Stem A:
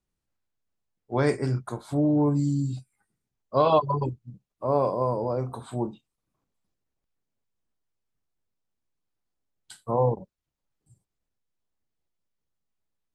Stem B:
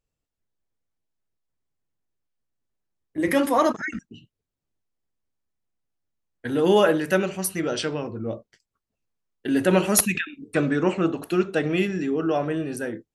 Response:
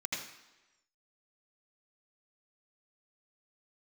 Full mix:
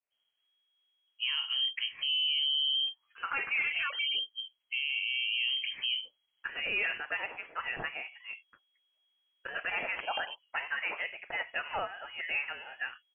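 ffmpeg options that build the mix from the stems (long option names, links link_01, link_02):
-filter_complex "[0:a]adynamicequalizer=threshold=0.00794:dfrequency=1700:dqfactor=0.87:tfrequency=1700:tqfactor=0.87:attack=5:release=100:ratio=0.375:range=2.5:mode=cutabove:tftype=bell,acompressor=threshold=-27dB:ratio=6,alimiter=limit=-22.5dB:level=0:latency=1,adelay=100,volume=2.5dB[link_01];[1:a]highpass=frequency=780:width=0.5412,highpass=frequency=780:width=1.3066,adynamicequalizer=threshold=0.00794:dfrequency=1600:dqfactor=1.2:tfrequency=1600:tqfactor=1.2:attack=5:release=100:ratio=0.375:range=2:mode=cutabove:tftype=bell,volume=0dB,asplit=2[link_02][link_03];[link_03]apad=whole_len=584280[link_04];[link_01][link_04]sidechaincompress=threshold=-36dB:ratio=8:attack=16:release=123[link_05];[link_05][link_02]amix=inputs=2:normalize=0,volume=19.5dB,asoftclip=hard,volume=-19.5dB,lowpass=frequency=2800:width_type=q:width=0.5098,lowpass=frequency=2800:width_type=q:width=0.6013,lowpass=frequency=2800:width_type=q:width=0.9,lowpass=frequency=2800:width_type=q:width=2.563,afreqshift=-3300,alimiter=limit=-23.5dB:level=0:latency=1:release=44"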